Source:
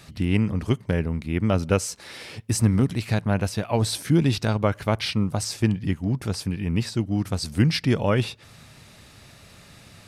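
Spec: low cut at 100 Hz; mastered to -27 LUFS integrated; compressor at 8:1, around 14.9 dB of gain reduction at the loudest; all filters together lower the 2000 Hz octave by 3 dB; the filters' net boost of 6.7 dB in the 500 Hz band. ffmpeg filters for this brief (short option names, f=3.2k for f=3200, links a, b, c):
-af "highpass=100,equalizer=f=500:t=o:g=8.5,equalizer=f=2k:t=o:g=-4.5,acompressor=threshold=-27dB:ratio=8,volume=6dB"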